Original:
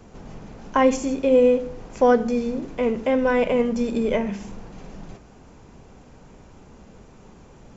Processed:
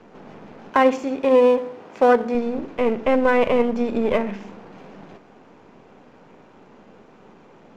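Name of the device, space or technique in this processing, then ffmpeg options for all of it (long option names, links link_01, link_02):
crystal radio: -filter_complex "[0:a]highpass=230,lowpass=3100,aeval=exprs='if(lt(val(0),0),0.447*val(0),val(0))':channel_layout=same,asettb=1/sr,asplit=3[link_01][link_02][link_03];[link_01]atrim=end=0.704[link_04];[link_02]atrim=start=0.7:end=2.35,asetpts=PTS-STARTPTS,afade=type=in:duration=0.004:curve=qsin,afade=type=out:start_time=1.646:duration=0.004:curve=qsin,highpass=frequency=220:poles=1[link_05];[link_03]atrim=start=2.346[link_06];[link_04][link_05]acrossfade=duration=0.004:curve1=hsin:curve2=qsin[link_07];[link_07][link_06]acrossfade=duration=0.004:curve1=qsin:curve2=hsin,volume=5dB"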